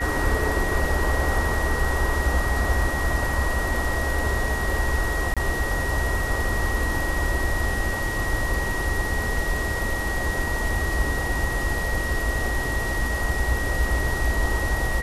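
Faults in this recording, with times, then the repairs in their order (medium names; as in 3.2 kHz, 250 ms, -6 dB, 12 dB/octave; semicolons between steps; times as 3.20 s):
whine 1.9 kHz -28 dBFS
5.34–5.37 s: dropout 26 ms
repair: band-stop 1.9 kHz, Q 30; interpolate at 5.34 s, 26 ms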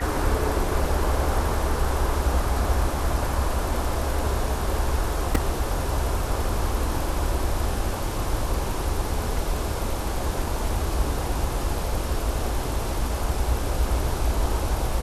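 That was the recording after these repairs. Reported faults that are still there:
nothing left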